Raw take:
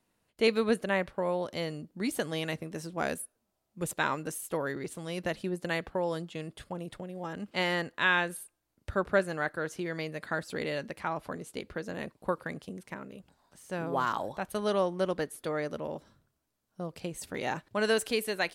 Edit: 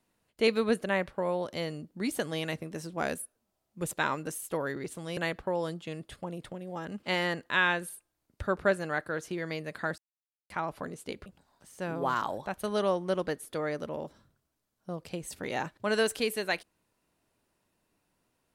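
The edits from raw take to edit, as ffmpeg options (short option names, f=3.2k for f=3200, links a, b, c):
-filter_complex "[0:a]asplit=5[a][b][c][d][e];[a]atrim=end=5.172[f];[b]atrim=start=5.648:end=10.46,asetpts=PTS-STARTPTS,afade=t=out:st=4.808:d=0.004:c=hsin[g];[c]atrim=start=10.46:end=10.98,asetpts=PTS-STARTPTS,volume=0[h];[d]atrim=start=10.98:end=11.742,asetpts=PTS-STARTPTS,afade=t=in:d=0.004:c=hsin[i];[e]atrim=start=13.168[j];[g][h][i]concat=n=3:v=0:a=1[k];[f][k]acrossfade=d=0.004:c1=hsin:c2=hsin[l];[l][j]acrossfade=d=0.004:c1=hsin:c2=hsin"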